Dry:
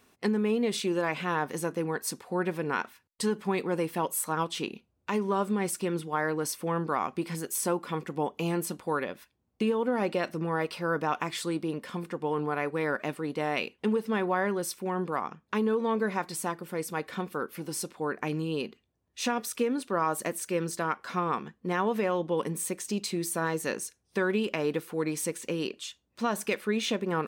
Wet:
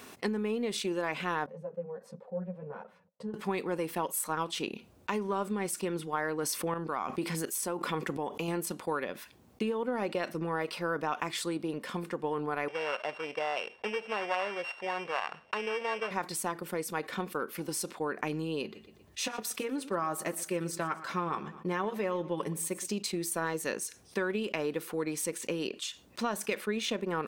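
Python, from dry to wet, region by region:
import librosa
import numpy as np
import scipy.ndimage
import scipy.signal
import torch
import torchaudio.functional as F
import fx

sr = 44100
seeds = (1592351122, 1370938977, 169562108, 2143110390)

y = fx.chain(x, sr, fx.double_bandpass(hz=310.0, octaves=1.6),
    fx.ensemble(), at=(1.46, 3.34))
y = fx.chain(y, sr, fx.chopper(hz=1.4, depth_pct=65, duty_pct=50),
    fx.env_flatten(amount_pct=50), at=(6.38, 8.48))
y = fx.chain(y, sr, fx.sample_sort(block=16),
    fx.lowpass(hz=3000.0, slope=12),
    fx.low_shelf_res(hz=410.0, db=-12.0, q=1.5), at=(12.68, 16.11))
y = fx.chain(y, sr, fx.low_shelf(hz=110.0, db=7.5),
    fx.notch_comb(f0_hz=240.0),
    fx.echo_feedback(ms=120, feedback_pct=33, wet_db=-19.0), at=(18.63, 22.88))
y = fx.highpass(y, sr, hz=160.0, slope=6)
y = fx.transient(y, sr, attack_db=5, sustain_db=-5)
y = fx.env_flatten(y, sr, amount_pct=50)
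y = y * librosa.db_to_amplitude(-7.0)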